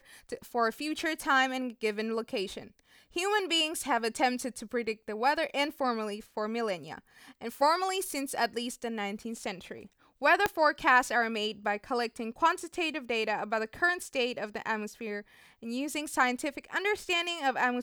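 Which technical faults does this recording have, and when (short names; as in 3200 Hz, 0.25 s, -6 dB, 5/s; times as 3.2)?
10.46 pop -11 dBFS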